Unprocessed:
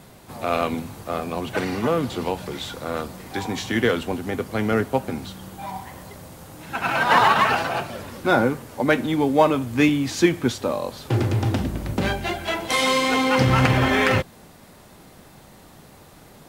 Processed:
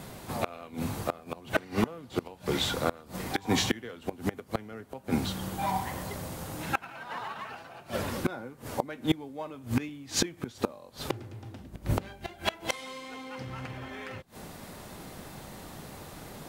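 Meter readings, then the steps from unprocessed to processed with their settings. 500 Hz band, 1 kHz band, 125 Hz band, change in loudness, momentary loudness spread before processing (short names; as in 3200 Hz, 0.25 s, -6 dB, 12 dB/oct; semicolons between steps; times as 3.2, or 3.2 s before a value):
-12.0 dB, -13.0 dB, -11.0 dB, -11.5 dB, 16 LU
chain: flipped gate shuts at -16 dBFS, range -25 dB; gain +3 dB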